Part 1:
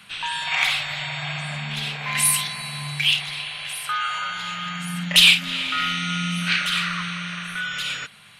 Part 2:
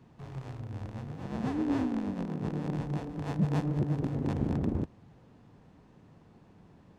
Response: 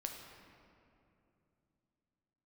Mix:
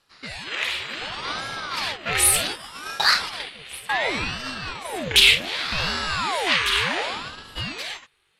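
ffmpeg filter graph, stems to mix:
-filter_complex "[0:a]volume=-5dB[link_01];[1:a]adelay=650,volume=-14dB[link_02];[link_01][link_02]amix=inputs=2:normalize=0,agate=range=-11dB:threshold=-34dB:ratio=16:detection=peak,dynaudnorm=framelen=110:gausssize=17:maxgain=10.5dB,aeval=exprs='val(0)*sin(2*PI*860*n/s+860*0.75/0.67*sin(2*PI*0.67*n/s))':channel_layout=same"

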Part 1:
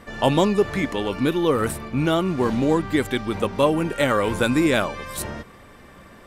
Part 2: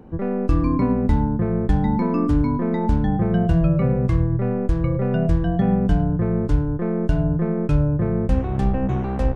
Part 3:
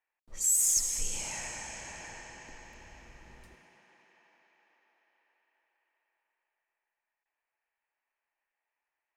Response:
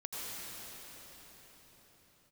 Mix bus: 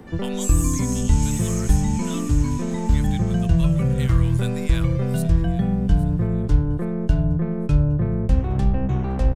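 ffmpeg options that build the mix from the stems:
-filter_complex "[0:a]highpass=1200,volume=-6.5dB,asplit=2[link_01][link_02];[link_02]volume=-16.5dB[link_03];[1:a]volume=2.5dB,asplit=2[link_04][link_05];[link_05]volume=-24dB[link_06];[2:a]acompressor=threshold=-31dB:ratio=6,volume=2.5dB,asplit=2[link_07][link_08];[link_08]volume=-4.5dB[link_09];[link_03][link_06][link_09]amix=inputs=3:normalize=0,aecho=0:1:814|1628|2442|3256|4070:1|0.37|0.137|0.0507|0.0187[link_10];[link_01][link_04][link_07][link_10]amix=inputs=4:normalize=0,acrossover=split=160|3000[link_11][link_12][link_13];[link_12]acompressor=threshold=-27dB:ratio=6[link_14];[link_11][link_14][link_13]amix=inputs=3:normalize=0"

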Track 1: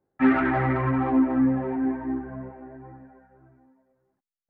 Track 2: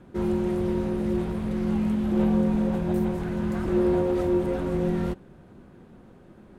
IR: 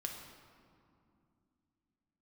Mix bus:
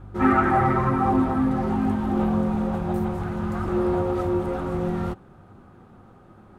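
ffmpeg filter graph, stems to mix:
-filter_complex "[0:a]aeval=exprs='val(0)+0.00891*(sin(2*PI*50*n/s)+sin(2*PI*2*50*n/s)/2+sin(2*PI*3*50*n/s)/3+sin(2*PI*4*50*n/s)/4+sin(2*PI*5*50*n/s)/5)':channel_layout=same,volume=-2.5dB[link_01];[1:a]volume=-1.5dB[link_02];[link_01][link_02]amix=inputs=2:normalize=0,equalizer=frequency=100:width_type=o:width=0.33:gain=11,equalizer=frequency=800:width_type=o:width=0.33:gain=9,equalizer=frequency=1250:width_type=o:width=0.33:gain=12"

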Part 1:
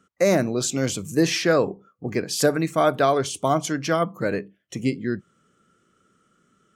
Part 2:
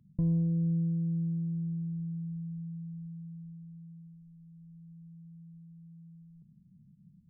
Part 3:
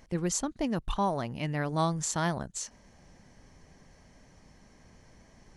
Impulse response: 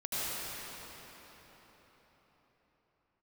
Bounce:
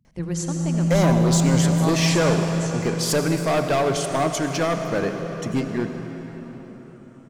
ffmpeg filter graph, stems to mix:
-filter_complex "[0:a]asoftclip=type=hard:threshold=-19dB,adelay=700,volume=0dB,asplit=2[link_01][link_02];[link_02]volume=-11.5dB[link_03];[1:a]dynaudnorm=framelen=140:gausssize=11:maxgain=15.5dB,volume=-5.5dB,asplit=2[link_04][link_05];[link_05]volume=-8.5dB[link_06];[2:a]adelay=50,volume=-3dB,asplit=2[link_07][link_08];[link_08]volume=-5.5dB[link_09];[3:a]atrim=start_sample=2205[link_10];[link_03][link_06][link_09]amix=inputs=3:normalize=0[link_11];[link_11][link_10]afir=irnorm=-1:irlink=0[link_12];[link_01][link_04][link_07][link_12]amix=inputs=4:normalize=0"

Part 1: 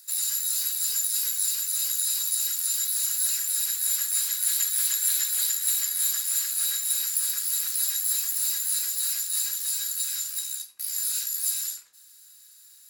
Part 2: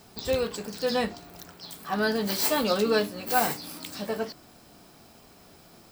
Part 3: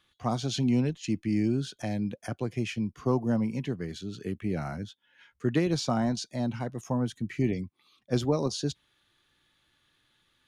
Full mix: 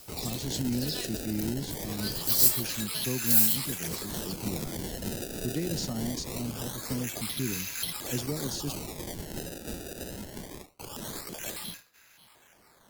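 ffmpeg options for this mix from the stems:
ffmpeg -i stem1.wav -i stem2.wav -i stem3.wav -filter_complex "[0:a]tiltshelf=frequency=1100:gain=8,acrusher=samples=23:mix=1:aa=0.000001:lfo=1:lforange=36.8:lforate=0.23,volume=-1.5dB[link_01];[1:a]highpass=1300,highshelf=frequency=8300:gain=6.5,tremolo=f=0.89:d=0.58,volume=-3dB[link_02];[2:a]volume=-5dB[link_03];[link_01][link_02][link_03]amix=inputs=3:normalize=0,aemphasis=mode=production:type=cd,acrossover=split=450|3000[link_04][link_05][link_06];[link_05]acompressor=threshold=-50dB:ratio=2.5[link_07];[link_04][link_07][link_06]amix=inputs=3:normalize=0" out.wav

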